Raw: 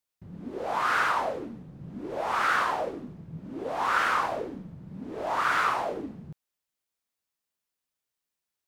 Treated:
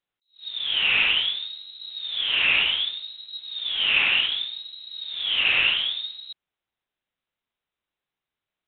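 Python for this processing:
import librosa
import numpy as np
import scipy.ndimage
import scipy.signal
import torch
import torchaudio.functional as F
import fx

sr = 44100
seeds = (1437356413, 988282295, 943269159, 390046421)

y = fx.low_shelf(x, sr, hz=91.0, db=-6.0)
y = fx.freq_invert(y, sr, carrier_hz=4000)
y = fx.attack_slew(y, sr, db_per_s=210.0)
y = F.gain(torch.from_numpy(y), 4.5).numpy()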